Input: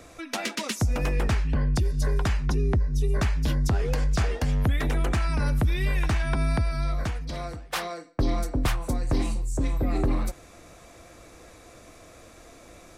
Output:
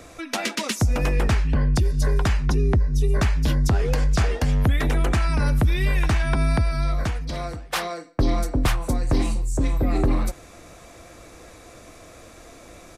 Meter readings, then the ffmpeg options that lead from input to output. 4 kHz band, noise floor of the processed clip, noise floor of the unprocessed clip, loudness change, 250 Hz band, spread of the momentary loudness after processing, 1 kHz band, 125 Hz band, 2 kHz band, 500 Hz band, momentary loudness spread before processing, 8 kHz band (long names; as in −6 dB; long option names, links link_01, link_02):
+4.0 dB, −46 dBFS, −50 dBFS, +4.0 dB, +4.0 dB, 7 LU, +4.0 dB, +4.0 dB, +4.0 dB, +4.0 dB, 7 LU, +4.0 dB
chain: -af "aresample=32000,aresample=44100,volume=4dB"